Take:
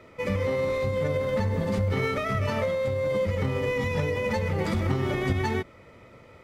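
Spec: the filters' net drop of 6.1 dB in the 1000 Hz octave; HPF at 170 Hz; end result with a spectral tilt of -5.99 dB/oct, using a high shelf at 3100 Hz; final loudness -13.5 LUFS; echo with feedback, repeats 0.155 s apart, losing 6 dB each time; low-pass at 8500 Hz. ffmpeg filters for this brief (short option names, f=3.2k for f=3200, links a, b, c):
-af "highpass=170,lowpass=8.5k,equalizer=f=1k:t=o:g=-6.5,highshelf=f=3.1k:g=-9,aecho=1:1:155|310|465|620|775|930:0.501|0.251|0.125|0.0626|0.0313|0.0157,volume=15.5dB"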